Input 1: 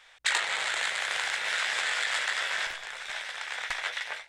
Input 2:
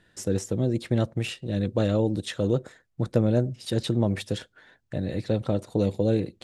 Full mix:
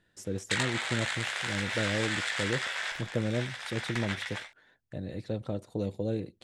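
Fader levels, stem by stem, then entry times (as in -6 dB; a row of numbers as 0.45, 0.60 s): -3.5, -8.5 dB; 0.25, 0.00 s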